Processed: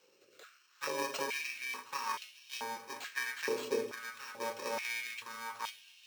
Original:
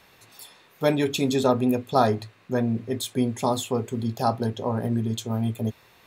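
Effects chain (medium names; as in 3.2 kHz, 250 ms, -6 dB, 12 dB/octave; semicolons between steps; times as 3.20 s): bit-reversed sample order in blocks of 64 samples; compression, threshold -23 dBFS, peak gain reduction 9 dB; rotary cabinet horn 0.8 Hz; shuffle delay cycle 714 ms, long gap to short 1.5:1, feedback 53%, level -20.5 dB; reverberation RT60 0.55 s, pre-delay 5 ms, DRR 4.5 dB; careless resampling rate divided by 4×, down filtered, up hold; step-sequenced high-pass 2.3 Hz 460–3000 Hz; trim -3.5 dB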